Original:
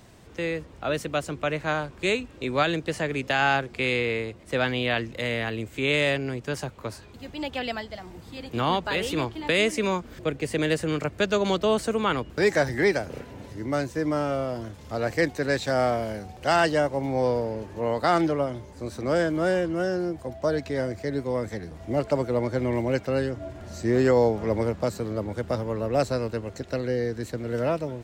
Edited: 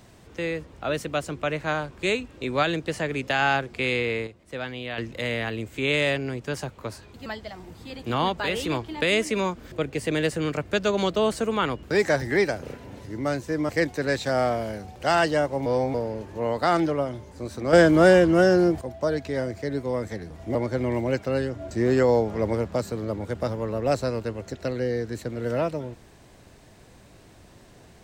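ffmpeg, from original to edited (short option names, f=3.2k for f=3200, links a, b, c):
-filter_complex "[0:a]asplit=11[a][b][c][d][e][f][g][h][i][j][k];[a]atrim=end=4.272[l];[b]atrim=start=4.268:end=4.982,asetpts=PTS-STARTPTS,volume=-8dB[m];[c]atrim=start=4.978:end=7.262[n];[d]atrim=start=7.728:end=14.162[o];[e]atrim=start=15.098:end=17.072[p];[f]atrim=start=17.068:end=17.352,asetpts=PTS-STARTPTS,areverse[q];[g]atrim=start=17.348:end=19.142[r];[h]atrim=start=19.138:end=20.222,asetpts=PTS-STARTPTS,volume=8.5dB[s];[i]atrim=start=20.218:end=21.962[t];[j]atrim=start=22.358:end=23.522[u];[k]atrim=start=23.788[v];[l][m]acrossfade=d=0.004:c1=hsin:c2=hsin[w];[w][n]acrossfade=d=0.004:c1=hsin:c2=hsin[x];[x][o]acrossfade=d=0.004:c1=hsin:c2=hsin[y];[y][p]acrossfade=d=0.004:c1=hsin:c2=hsin[z];[z][q]acrossfade=d=0.004:c1=hsin:c2=hsin[aa];[aa][r]acrossfade=d=0.004:c1=hsin:c2=hsin[ab];[ab][s]acrossfade=d=0.004:c1=hsin:c2=hsin[ac];[ac][t]acrossfade=d=0.004:c1=hsin:c2=hsin[ad];[ad][u]acrossfade=d=0.004:c1=hsin:c2=hsin[ae];[ae][v]acrossfade=d=0.004:c1=hsin:c2=hsin"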